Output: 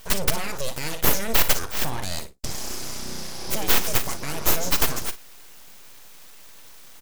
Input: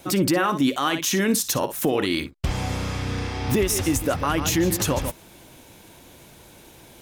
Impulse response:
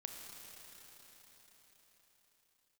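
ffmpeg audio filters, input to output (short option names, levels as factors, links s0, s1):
-filter_complex "[0:a]highshelf=f=3900:t=q:w=1.5:g=12.5,aeval=exprs='abs(val(0))':c=same,asplit=2[s0][s1];[s1]aecho=0:1:40|56:0.168|0.133[s2];[s0][s2]amix=inputs=2:normalize=0,volume=0.562"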